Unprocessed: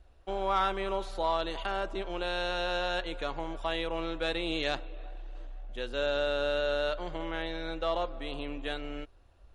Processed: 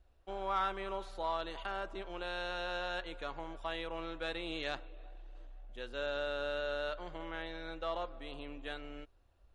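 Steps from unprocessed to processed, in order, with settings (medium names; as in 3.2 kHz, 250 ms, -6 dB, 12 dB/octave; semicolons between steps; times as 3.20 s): dynamic bell 1.4 kHz, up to +4 dB, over -44 dBFS, Q 1; trim -8.5 dB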